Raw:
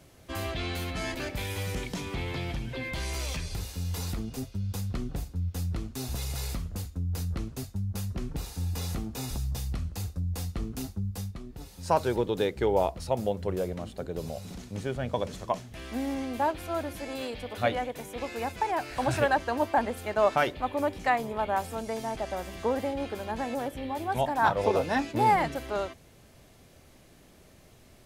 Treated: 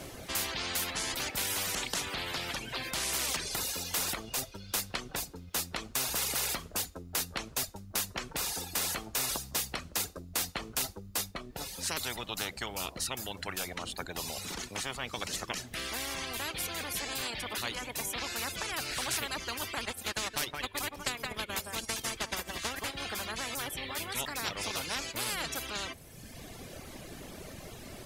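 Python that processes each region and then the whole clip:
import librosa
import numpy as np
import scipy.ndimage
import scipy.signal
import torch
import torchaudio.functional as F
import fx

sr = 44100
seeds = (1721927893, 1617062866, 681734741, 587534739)

y = fx.chain(x, sr, fx.transient(attack_db=8, sustain_db=-11),
    fx.echo_single(ms=170, db=-11.5), at=(19.84, 22.94))
y = fx.dereverb_blind(y, sr, rt60_s=1.0)
y = fx.spectral_comp(y, sr, ratio=10.0)
y = y * 10.0 ** (-4.5 / 20.0)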